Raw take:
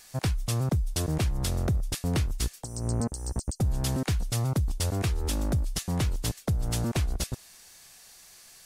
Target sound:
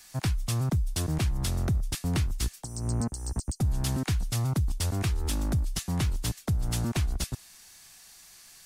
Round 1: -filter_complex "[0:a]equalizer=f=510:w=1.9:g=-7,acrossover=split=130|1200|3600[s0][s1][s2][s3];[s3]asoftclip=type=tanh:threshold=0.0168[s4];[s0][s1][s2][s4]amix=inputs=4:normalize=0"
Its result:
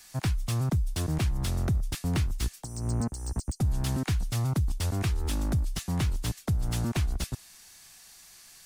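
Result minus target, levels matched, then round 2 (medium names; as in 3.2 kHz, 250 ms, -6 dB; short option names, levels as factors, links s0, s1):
saturation: distortion +12 dB
-filter_complex "[0:a]equalizer=f=510:w=1.9:g=-7,acrossover=split=130|1200|3600[s0][s1][s2][s3];[s3]asoftclip=type=tanh:threshold=0.0596[s4];[s0][s1][s2][s4]amix=inputs=4:normalize=0"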